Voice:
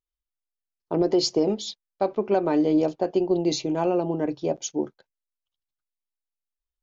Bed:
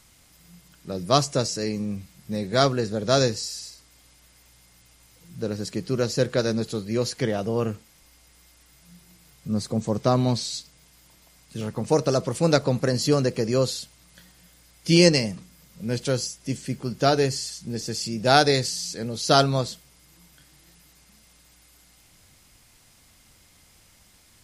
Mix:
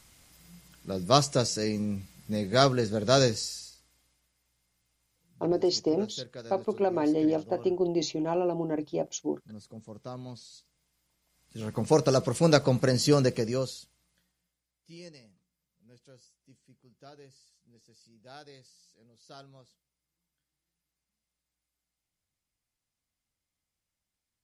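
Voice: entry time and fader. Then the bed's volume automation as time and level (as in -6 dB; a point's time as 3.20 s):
4.50 s, -4.5 dB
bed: 3.41 s -2 dB
4.33 s -20 dB
11.23 s -20 dB
11.76 s -1.5 dB
13.30 s -1.5 dB
14.62 s -31.5 dB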